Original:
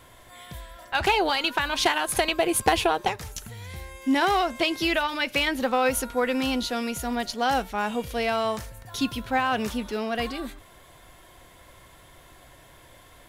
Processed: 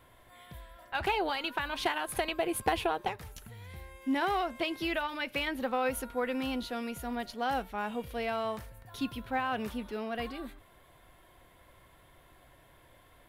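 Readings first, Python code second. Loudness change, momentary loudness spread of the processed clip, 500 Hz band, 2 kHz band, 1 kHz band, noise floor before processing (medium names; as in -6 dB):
-8.5 dB, 16 LU, -7.5 dB, -8.5 dB, -7.5 dB, -52 dBFS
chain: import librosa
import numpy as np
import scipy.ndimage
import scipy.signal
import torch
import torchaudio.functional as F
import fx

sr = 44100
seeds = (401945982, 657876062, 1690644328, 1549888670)

y = fx.peak_eq(x, sr, hz=6400.0, db=-9.5, octaves=1.2)
y = y * 10.0 ** (-7.5 / 20.0)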